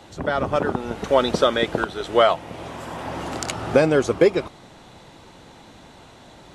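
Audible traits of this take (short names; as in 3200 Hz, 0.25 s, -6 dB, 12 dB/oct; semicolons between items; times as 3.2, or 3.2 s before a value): noise floor -47 dBFS; spectral tilt -3.5 dB/oct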